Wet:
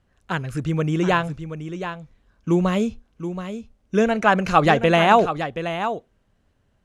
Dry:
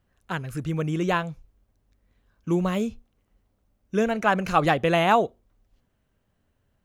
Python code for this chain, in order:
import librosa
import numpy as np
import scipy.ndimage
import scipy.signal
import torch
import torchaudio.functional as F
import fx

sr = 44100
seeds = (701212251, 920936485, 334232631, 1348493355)

p1 = scipy.signal.sosfilt(scipy.signal.butter(2, 8800.0, 'lowpass', fs=sr, output='sos'), x)
p2 = p1 + fx.echo_single(p1, sr, ms=726, db=-10.0, dry=0)
y = p2 * librosa.db_to_amplitude(4.5)